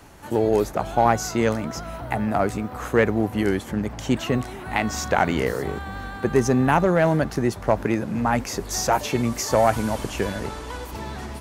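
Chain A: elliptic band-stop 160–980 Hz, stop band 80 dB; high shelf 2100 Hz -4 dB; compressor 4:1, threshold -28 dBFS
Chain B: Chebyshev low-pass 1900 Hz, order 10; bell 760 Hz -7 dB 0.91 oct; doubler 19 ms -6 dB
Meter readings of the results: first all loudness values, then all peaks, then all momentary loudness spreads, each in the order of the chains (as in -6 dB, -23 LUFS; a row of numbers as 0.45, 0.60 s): -33.5, -24.5 LUFS; -13.0, -7.0 dBFS; 5, 12 LU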